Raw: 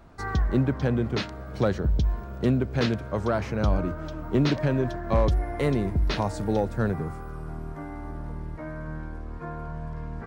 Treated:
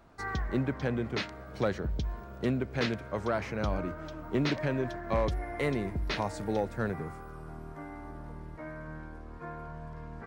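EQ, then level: dynamic EQ 2100 Hz, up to +5 dB, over -52 dBFS, Q 2.5; low shelf 200 Hz -6.5 dB; -4.0 dB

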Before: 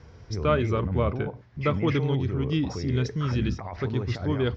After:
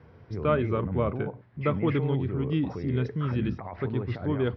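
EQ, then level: HPF 110 Hz; air absorption 350 m; 0.0 dB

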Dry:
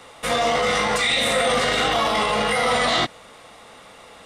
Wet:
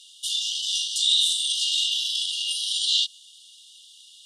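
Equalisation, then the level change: brick-wall FIR high-pass 2800 Hz; air absorption 53 m; high shelf 4500 Hz +8.5 dB; +1.5 dB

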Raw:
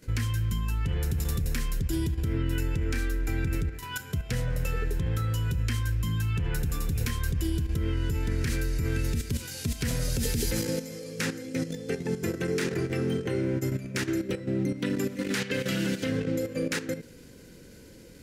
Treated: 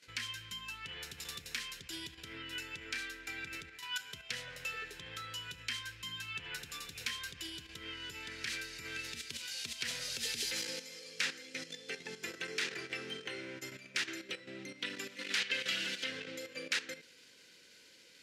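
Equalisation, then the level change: band-pass 3300 Hz, Q 1.2; +2.5 dB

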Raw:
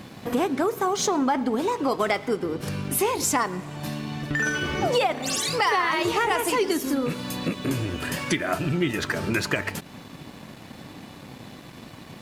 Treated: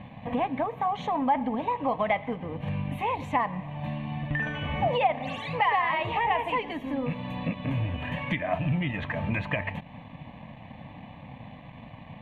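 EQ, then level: air absorption 330 m; high shelf 6200 Hz -7 dB; fixed phaser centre 1400 Hz, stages 6; +2.5 dB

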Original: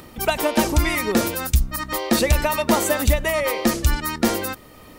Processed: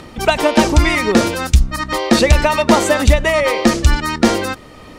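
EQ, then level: LPF 6800 Hz 12 dB/oct; +7.0 dB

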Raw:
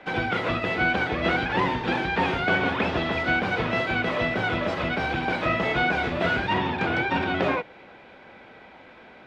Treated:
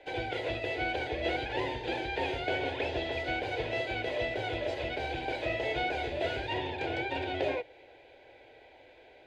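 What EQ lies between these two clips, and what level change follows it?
bell 180 Hz -6 dB 0.58 oct; fixed phaser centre 500 Hz, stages 4; notch 5500 Hz, Q 10; -4.0 dB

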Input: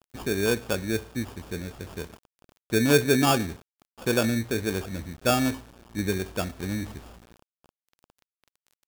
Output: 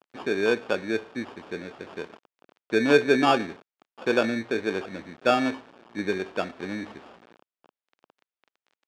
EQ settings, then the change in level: HPF 290 Hz 12 dB/oct; LPF 3100 Hz 12 dB/oct; +3.0 dB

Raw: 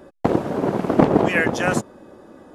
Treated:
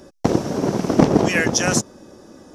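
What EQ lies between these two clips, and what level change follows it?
low shelf 460 Hz +8.5 dB; high shelf 2500 Hz +11 dB; bell 5700 Hz +14.5 dB 0.52 oct; -5.0 dB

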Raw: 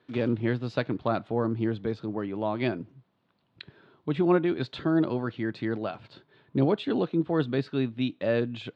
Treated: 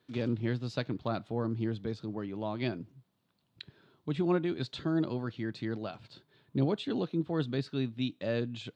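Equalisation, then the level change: tone controls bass +5 dB, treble +14 dB; -7.5 dB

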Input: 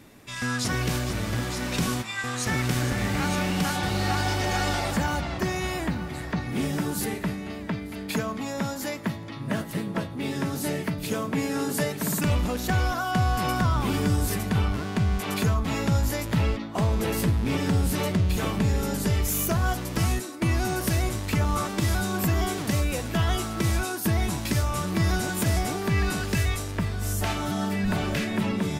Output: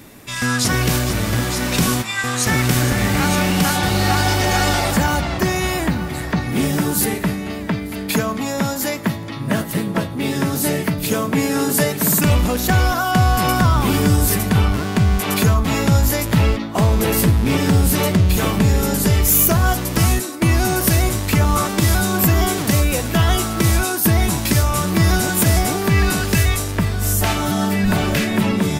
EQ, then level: high shelf 11000 Hz +10 dB; +8.5 dB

